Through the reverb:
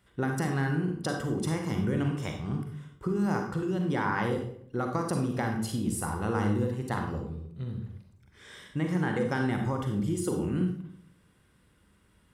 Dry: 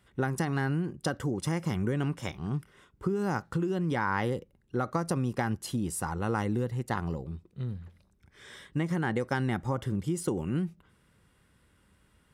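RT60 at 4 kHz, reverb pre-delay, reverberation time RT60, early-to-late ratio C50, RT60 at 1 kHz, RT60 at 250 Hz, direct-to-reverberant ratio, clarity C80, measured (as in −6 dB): 0.45 s, 37 ms, 0.60 s, 4.5 dB, 0.55 s, 0.80 s, 2.5 dB, 9.0 dB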